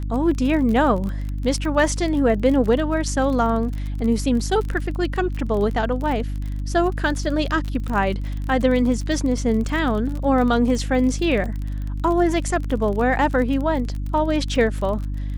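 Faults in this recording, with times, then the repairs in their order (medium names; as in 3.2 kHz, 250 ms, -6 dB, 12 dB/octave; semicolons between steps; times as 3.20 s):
crackle 33 per s -27 dBFS
hum 50 Hz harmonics 6 -26 dBFS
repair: de-click; de-hum 50 Hz, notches 6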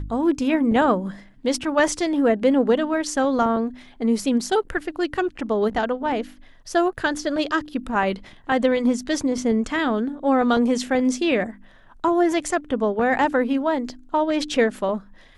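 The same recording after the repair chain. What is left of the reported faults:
nothing left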